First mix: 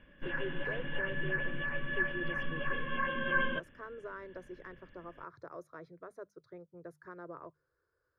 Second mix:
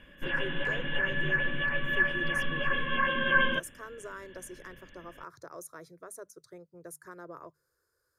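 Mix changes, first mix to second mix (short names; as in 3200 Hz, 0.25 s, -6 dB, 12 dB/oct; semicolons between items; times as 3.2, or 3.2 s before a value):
background +4.0 dB; master: remove air absorption 340 m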